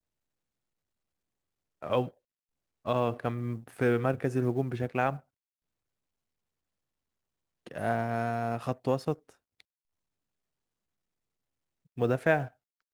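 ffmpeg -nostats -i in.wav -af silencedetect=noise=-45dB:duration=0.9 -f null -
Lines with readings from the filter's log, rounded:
silence_start: 0.00
silence_end: 1.82 | silence_duration: 1.82
silence_start: 5.20
silence_end: 7.66 | silence_duration: 2.47
silence_start: 9.60
silence_end: 11.97 | silence_duration: 2.37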